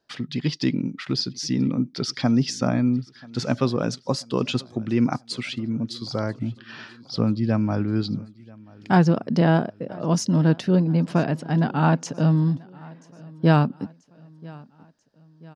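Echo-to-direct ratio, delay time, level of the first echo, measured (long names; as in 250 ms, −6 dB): −22.5 dB, 986 ms, −23.5 dB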